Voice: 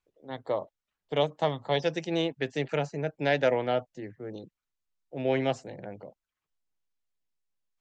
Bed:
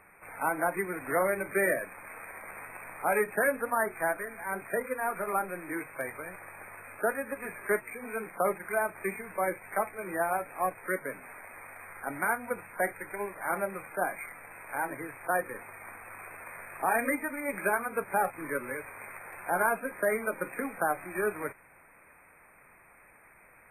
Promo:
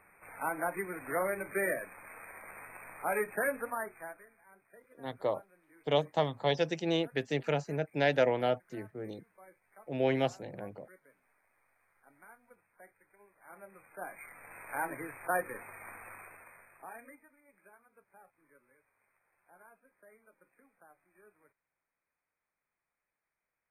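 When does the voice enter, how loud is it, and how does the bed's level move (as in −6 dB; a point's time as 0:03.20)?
4.75 s, −2.0 dB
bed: 0:03.63 −5 dB
0:04.55 −27 dB
0:13.24 −27 dB
0:14.55 −2.5 dB
0:16.08 −2.5 dB
0:17.45 −32 dB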